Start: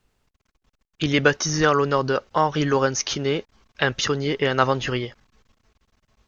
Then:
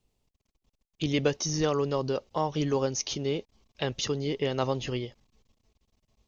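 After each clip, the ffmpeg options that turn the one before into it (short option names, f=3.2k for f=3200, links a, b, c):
-af "equalizer=f=1.5k:w=1.6:g=-14.5,volume=-5.5dB"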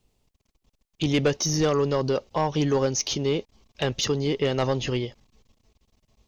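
-af "asoftclip=type=tanh:threshold=-20dB,volume=6dB"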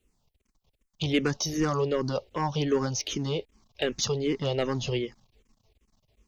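-filter_complex "[0:a]asplit=2[a][b];[b]afreqshift=-2.6[c];[a][c]amix=inputs=2:normalize=1"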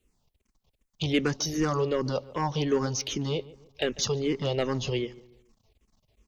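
-filter_complex "[0:a]asplit=2[a][b];[b]adelay=145,lowpass=f=1.9k:p=1,volume=-19dB,asplit=2[c][d];[d]adelay=145,lowpass=f=1.9k:p=1,volume=0.4,asplit=2[e][f];[f]adelay=145,lowpass=f=1.9k:p=1,volume=0.4[g];[a][c][e][g]amix=inputs=4:normalize=0"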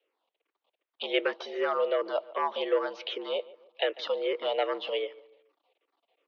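-af "highpass=f=340:t=q:w=0.5412,highpass=f=340:t=q:w=1.307,lowpass=f=3.5k:t=q:w=0.5176,lowpass=f=3.5k:t=q:w=0.7071,lowpass=f=3.5k:t=q:w=1.932,afreqshift=76,volume=1dB"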